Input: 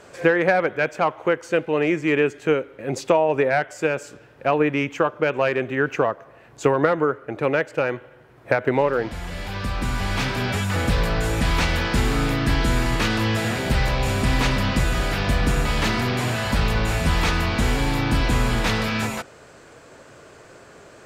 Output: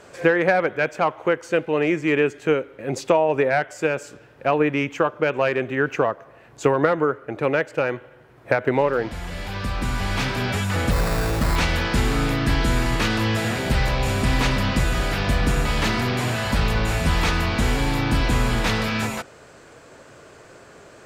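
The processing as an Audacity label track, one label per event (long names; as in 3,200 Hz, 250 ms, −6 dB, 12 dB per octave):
10.910000	11.560000	sample-rate reduction 3,100 Hz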